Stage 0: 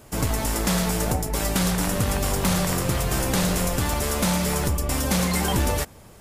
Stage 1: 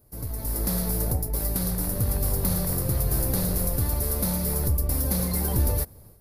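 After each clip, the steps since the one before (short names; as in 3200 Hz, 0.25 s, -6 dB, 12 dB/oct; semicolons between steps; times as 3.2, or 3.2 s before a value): EQ curve 110 Hz 0 dB, 190 Hz -7 dB, 510 Hz -6 dB, 760 Hz -11 dB, 1300 Hz -14 dB, 2000 Hz -15 dB, 3100 Hz -20 dB, 4400 Hz -7 dB, 7600 Hz -17 dB, 11000 Hz +4 dB; AGC gain up to 11.5 dB; gain -8.5 dB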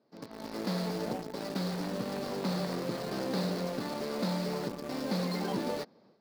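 elliptic band-pass 200–4600 Hz, stop band 40 dB; in parallel at -6 dB: bit-crush 6-bit; on the sum: gain -3.5 dB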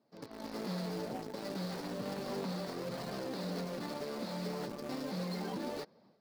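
limiter -28 dBFS, peak gain reduction 7.5 dB; flange 0.33 Hz, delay 0.9 ms, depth 9.1 ms, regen -49%; gain +1.5 dB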